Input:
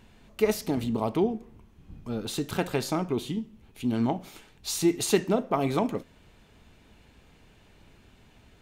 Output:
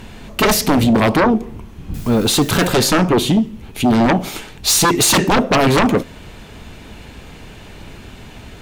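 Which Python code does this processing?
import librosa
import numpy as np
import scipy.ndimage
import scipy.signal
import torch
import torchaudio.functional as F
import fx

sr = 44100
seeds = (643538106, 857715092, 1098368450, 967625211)

y = fx.quant_dither(x, sr, seeds[0], bits=10, dither='triangular', at=(1.94, 2.73))
y = fx.fold_sine(y, sr, drive_db=17, ceiling_db=-8.0)
y = F.gain(torch.from_numpy(y), -1.0).numpy()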